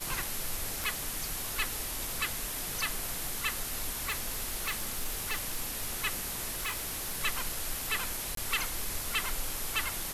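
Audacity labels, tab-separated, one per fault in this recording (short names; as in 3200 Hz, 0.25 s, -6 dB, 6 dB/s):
0.840000	0.840000	pop
3.940000	5.960000	clipped -27.5 dBFS
6.510000	7.220000	clipped -29.5 dBFS
8.350000	8.370000	gap 23 ms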